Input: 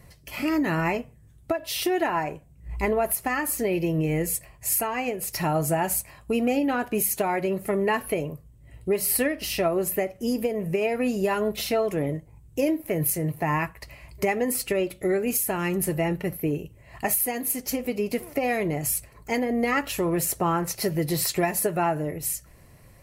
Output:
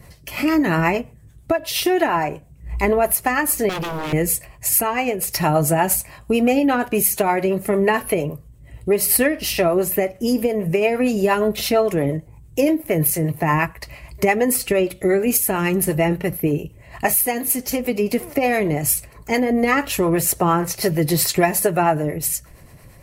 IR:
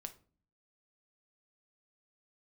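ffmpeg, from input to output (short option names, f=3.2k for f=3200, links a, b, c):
-filter_complex "[0:a]acrossover=split=410[a][b];[a]aeval=exprs='val(0)*(1-0.5/2+0.5/2*cos(2*PI*8.7*n/s))':c=same[c];[b]aeval=exprs='val(0)*(1-0.5/2-0.5/2*cos(2*PI*8.7*n/s))':c=same[d];[c][d]amix=inputs=2:normalize=0,asettb=1/sr,asplit=3[e][f][g];[e]atrim=end=3.694[h];[f]atrim=start=3.69:end=4.13,asetpts=PTS-STARTPTS,afade=t=in:d=0.004:c=qsin,afade=t=out:st=0.436:d=0.004:c=qsin,aeval=exprs='0.0316*(abs(mod(val(0)/0.0316+3,4)-2)-1)':c=same[i];[g]atrim=start=4.126[j];[h][i]acrossfade=d=0.004:c1=hsin:c2=qsin[k];[k][j]acrossfade=d=0.004:c1=qsin:c2=hsin,volume=9dB"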